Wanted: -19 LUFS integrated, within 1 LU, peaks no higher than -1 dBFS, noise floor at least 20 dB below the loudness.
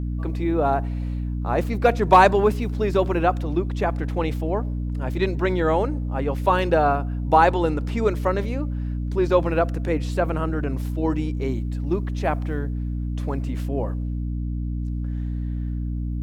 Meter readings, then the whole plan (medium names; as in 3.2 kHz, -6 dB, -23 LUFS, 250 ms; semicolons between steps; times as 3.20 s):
dropouts 1; longest dropout 1.3 ms; hum 60 Hz; highest harmonic 300 Hz; hum level -24 dBFS; loudness -23.5 LUFS; peak level -3.0 dBFS; loudness target -19.0 LUFS
-> interpolate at 6.59 s, 1.3 ms; hum notches 60/120/180/240/300 Hz; trim +4.5 dB; peak limiter -1 dBFS